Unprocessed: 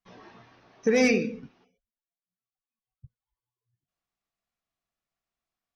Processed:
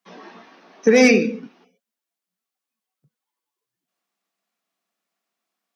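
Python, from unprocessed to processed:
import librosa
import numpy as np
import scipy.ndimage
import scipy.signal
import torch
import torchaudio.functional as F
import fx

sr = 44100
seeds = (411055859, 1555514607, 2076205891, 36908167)

y = scipy.signal.sosfilt(scipy.signal.butter(8, 180.0, 'highpass', fs=sr, output='sos'), x)
y = F.gain(torch.from_numpy(y), 8.5).numpy()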